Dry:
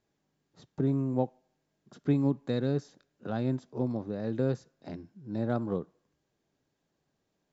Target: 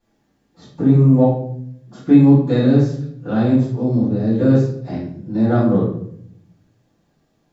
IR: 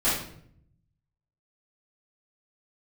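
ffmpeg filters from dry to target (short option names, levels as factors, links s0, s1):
-filter_complex "[0:a]asettb=1/sr,asplit=3[s0][s1][s2];[s0]atrim=end=3.714[s3];[s1]atrim=start=3.71:end=4.4,asetpts=PTS-STARTPTS,afade=t=in:d=0.004:c=qsin,afade=t=out:st=0.686:d=0.004:c=qsin,acrossover=split=420|3000[s4][s5][s6];[s5]acompressor=threshold=0.00562:ratio=6[s7];[s4][s7][s6]amix=inputs=3:normalize=0[s8];[s2]atrim=start=4.396[s9];[s3][s8]acrossfade=d=0.004:c1=hsin:c2=qsin[s10];[s10][s9]acrossfade=d=0.004:c1=qsin:c2=hsin[s11];[1:a]atrim=start_sample=2205[s12];[s11][s12]afir=irnorm=-1:irlink=0"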